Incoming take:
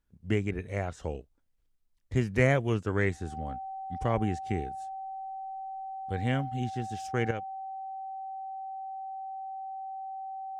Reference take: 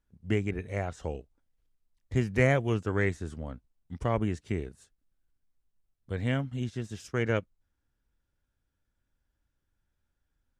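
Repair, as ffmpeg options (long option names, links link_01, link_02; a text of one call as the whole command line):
ffmpeg -i in.wav -af "bandreject=frequency=770:width=30,asetnsamples=nb_out_samples=441:pad=0,asendcmd='7.31 volume volume 9dB',volume=0dB" out.wav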